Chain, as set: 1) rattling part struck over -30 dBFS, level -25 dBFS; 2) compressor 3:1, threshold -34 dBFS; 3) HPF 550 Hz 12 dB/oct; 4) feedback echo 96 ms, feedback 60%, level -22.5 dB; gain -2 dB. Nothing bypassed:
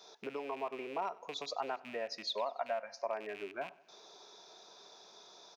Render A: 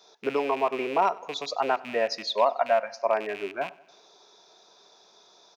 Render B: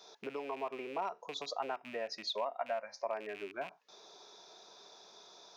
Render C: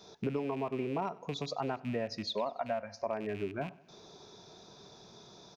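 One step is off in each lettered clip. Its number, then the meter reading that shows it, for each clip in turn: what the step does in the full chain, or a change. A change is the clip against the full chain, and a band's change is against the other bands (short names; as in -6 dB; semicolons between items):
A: 2, mean gain reduction 10.0 dB; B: 4, echo-to-direct -20.5 dB to none; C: 3, crest factor change -2.5 dB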